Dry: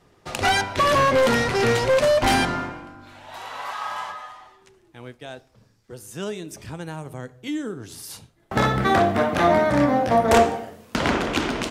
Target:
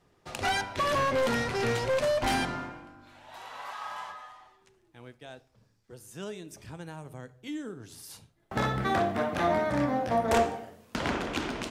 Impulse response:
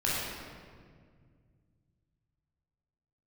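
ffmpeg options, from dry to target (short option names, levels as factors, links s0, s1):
-filter_complex "[0:a]asplit=2[s0][s1];[1:a]atrim=start_sample=2205,atrim=end_sample=3969[s2];[s1][s2]afir=irnorm=-1:irlink=0,volume=0.0562[s3];[s0][s3]amix=inputs=2:normalize=0,volume=0.355"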